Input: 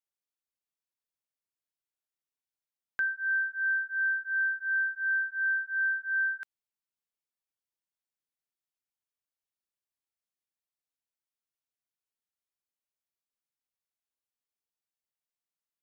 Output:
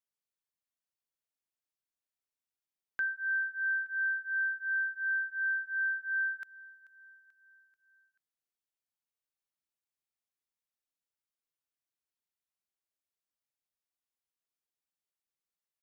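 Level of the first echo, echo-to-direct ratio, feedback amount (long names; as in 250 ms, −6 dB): −20.0 dB, −18.5 dB, 52%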